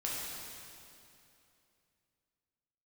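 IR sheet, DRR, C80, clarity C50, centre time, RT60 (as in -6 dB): -5.5 dB, -0.5 dB, -2.0 dB, 0.151 s, 2.8 s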